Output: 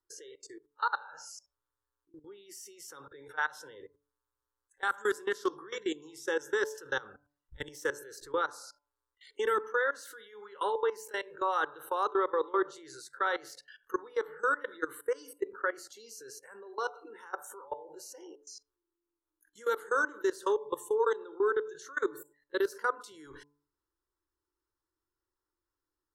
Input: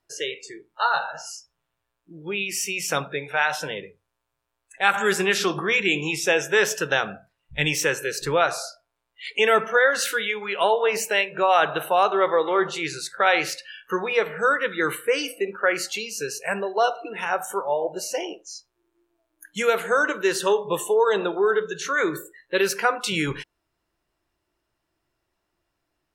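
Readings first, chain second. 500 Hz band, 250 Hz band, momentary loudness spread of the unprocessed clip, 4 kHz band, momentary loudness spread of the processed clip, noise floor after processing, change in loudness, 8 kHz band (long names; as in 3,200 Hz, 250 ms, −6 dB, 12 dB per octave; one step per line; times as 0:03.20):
−10.0 dB, −11.0 dB, 12 LU, −18.0 dB, 19 LU, below −85 dBFS, −10.5 dB, −16.5 dB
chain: output level in coarse steps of 21 dB
phaser with its sweep stopped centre 670 Hz, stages 6
hum removal 145 Hz, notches 7
level −4 dB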